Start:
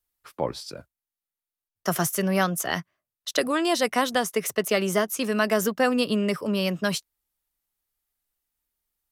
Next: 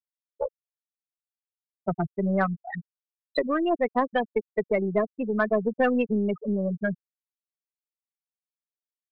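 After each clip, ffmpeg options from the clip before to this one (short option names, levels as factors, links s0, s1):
-af "afftfilt=real='re*gte(hypot(re,im),0.224)':imag='im*gte(hypot(re,im),0.224)':win_size=1024:overlap=0.75,aeval=exprs='0.316*(cos(1*acos(clip(val(0)/0.316,-1,1)))-cos(1*PI/2))+0.0126*(cos(4*acos(clip(val(0)/0.316,-1,1)))-cos(4*PI/2))':c=same"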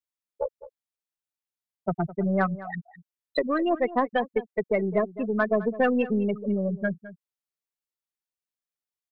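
-filter_complex "[0:a]asplit=2[s0][s1];[s1]adelay=209.9,volume=0.158,highshelf=f=4000:g=-4.72[s2];[s0][s2]amix=inputs=2:normalize=0"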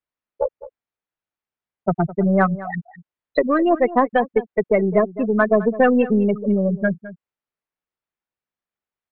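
-af "lowpass=2200,volume=2.37"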